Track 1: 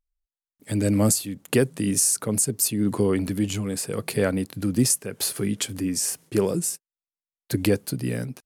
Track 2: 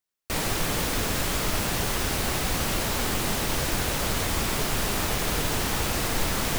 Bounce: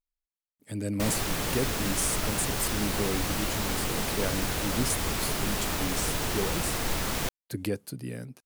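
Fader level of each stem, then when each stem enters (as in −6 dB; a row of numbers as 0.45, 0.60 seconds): −9.5, −3.5 decibels; 0.00, 0.70 seconds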